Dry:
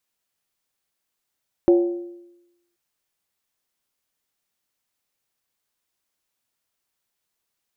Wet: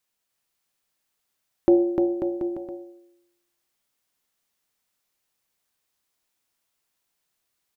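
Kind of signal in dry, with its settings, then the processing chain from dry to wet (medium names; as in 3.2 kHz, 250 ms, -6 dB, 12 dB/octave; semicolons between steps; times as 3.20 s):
skin hit length 1.08 s, lowest mode 348 Hz, decay 0.94 s, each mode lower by 10 dB, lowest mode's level -9.5 dB
de-hum 60.11 Hz, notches 10; on a send: bouncing-ball echo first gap 300 ms, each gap 0.8×, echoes 5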